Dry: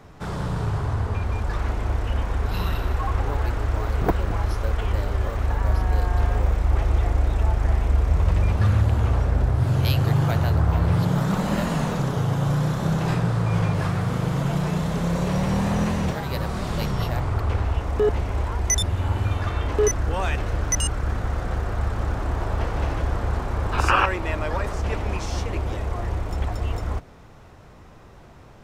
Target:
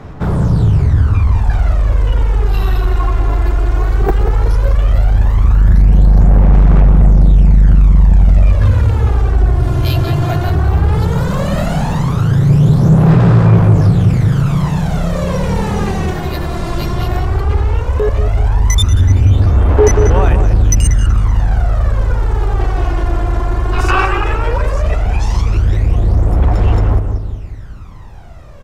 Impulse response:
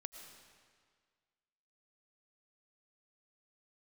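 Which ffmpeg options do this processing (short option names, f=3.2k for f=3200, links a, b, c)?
-filter_complex "[0:a]lowshelf=f=290:g=5.5,asplit=2[a][b];[b]adelay=187,lowpass=f=4.4k:p=1,volume=-6.5dB,asplit=2[c][d];[d]adelay=187,lowpass=f=4.4k:p=1,volume=0.52,asplit=2[e][f];[f]adelay=187,lowpass=f=4.4k:p=1,volume=0.52,asplit=2[g][h];[h]adelay=187,lowpass=f=4.4k:p=1,volume=0.52,asplit=2[i][j];[j]adelay=187,lowpass=f=4.4k:p=1,volume=0.52,asplit=2[k][l];[l]adelay=187,lowpass=f=4.4k:p=1,volume=0.52[m];[a][c][e][g][i][k][m]amix=inputs=7:normalize=0,aphaser=in_gain=1:out_gain=1:delay=2.9:decay=0.63:speed=0.15:type=sinusoidal,acontrast=38,asplit=2[n][o];[1:a]atrim=start_sample=2205,afade=t=out:st=0.18:d=0.01,atrim=end_sample=8379[p];[o][p]afir=irnorm=-1:irlink=0,volume=-1dB[q];[n][q]amix=inputs=2:normalize=0,volume=-5.5dB"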